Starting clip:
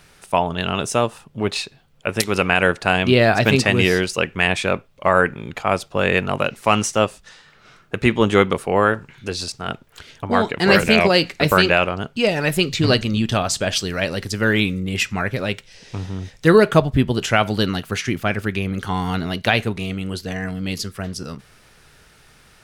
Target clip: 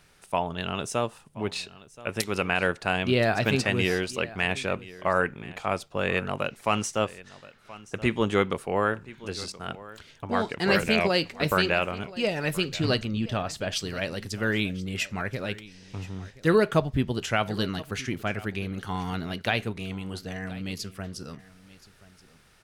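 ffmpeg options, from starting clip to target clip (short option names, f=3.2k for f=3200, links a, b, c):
-filter_complex "[0:a]asettb=1/sr,asplit=3[a][b][c];[a]atrim=end=13.054[d];[b]atrim=start=13.05:end=13.72,asetpts=PTS-STARTPTS,afade=t=in:d=0.004:c=qsin,afade=t=out:st=0.666:d=0.004:c=qsin,equalizer=f=9.2k:w=0.46:g=-9[e];[c]atrim=start=13.716[f];[d][e]acrossfade=d=0.004:c1=hsin:c2=qsin[g];[g][f]acrossfade=d=0.004:c1=qsin:c2=hsin,aecho=1:1:1026:0.112,volume=-8.5dB"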